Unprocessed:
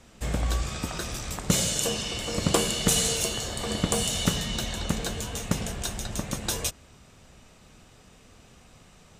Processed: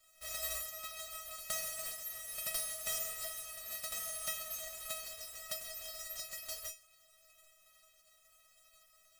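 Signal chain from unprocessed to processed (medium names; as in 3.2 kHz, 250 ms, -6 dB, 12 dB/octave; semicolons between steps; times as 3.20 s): formants flattened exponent 0.1; feedback comb 640 Hz, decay 0.22 s, harmonics all, mix 100%; trim +2.5 dB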